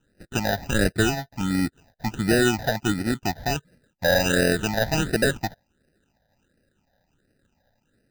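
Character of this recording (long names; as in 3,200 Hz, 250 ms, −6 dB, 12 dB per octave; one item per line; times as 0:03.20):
aliases and images of a low sample rate 1,100 Hz, jitter 0%
phaser sweep stages 8, 1.4 Hz, lowest notch 350–1,000 Hz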